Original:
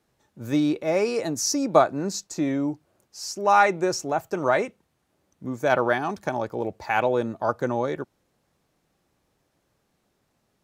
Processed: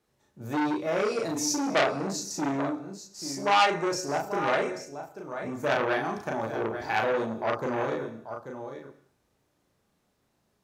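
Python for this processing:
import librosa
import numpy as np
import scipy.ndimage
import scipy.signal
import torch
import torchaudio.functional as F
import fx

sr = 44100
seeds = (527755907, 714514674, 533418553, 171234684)

p1 = fx.doubler(x, sr, ms=36.0, db=-2.0)
p2 = p1 + fx.echo_single(p1, sr, ms=837, db=-11.5, dry=0)
p3 = fx.rev_gated(p2, sr, seeds[0], gate_ms=280, shape='falling', drr_db=9.0)
p4 = fx.transformer_sat(p3, sr, knee_hz=2600.0)
y = p4 * 10.0 ** (-4.5 / 20.0)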